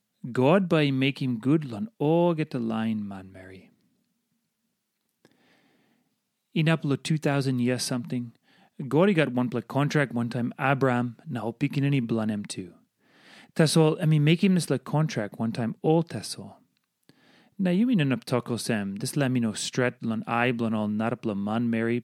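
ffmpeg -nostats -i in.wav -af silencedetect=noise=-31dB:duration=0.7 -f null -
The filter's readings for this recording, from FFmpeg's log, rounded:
silence_start: 3.18
silence_end: 6.56 | silence_duration: 3.38
silence_start: 12.63
silence_end: 13.56 | silence_duration: 0.94
silence_start: 16.40
silence_end: 17.60 | silence_duration: 1.20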